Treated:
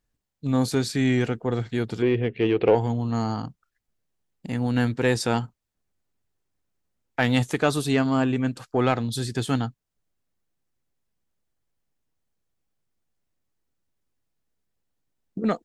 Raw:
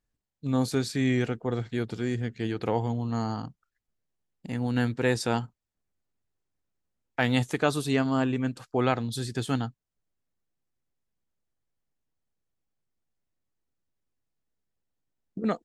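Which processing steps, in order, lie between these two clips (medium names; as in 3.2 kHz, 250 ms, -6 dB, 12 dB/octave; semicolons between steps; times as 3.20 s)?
2.02–2.75 s: FFT filter 240 Hz 0 dB, 420 Hz +11 dB, 1.5 kHz -3 dB, 2.7 kHz +10 dB, 7.3 kHz -30 dB; in parallel at -4 dB: saturation -21 dBFS, distortion -12 dB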